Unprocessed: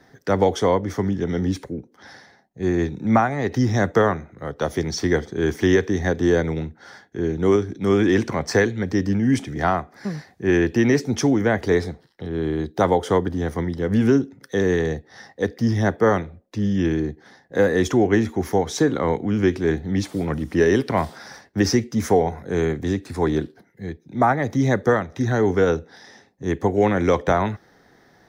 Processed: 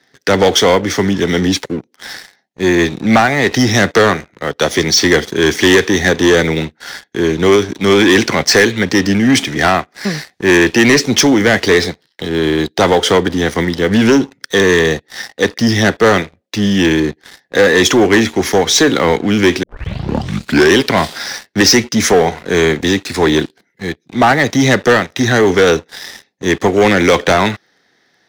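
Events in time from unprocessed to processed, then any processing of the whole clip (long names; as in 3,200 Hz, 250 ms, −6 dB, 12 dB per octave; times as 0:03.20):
0:19.63: tape start 1.11 s
whole clip: meter weighting curve D; leveller curve on the samples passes 3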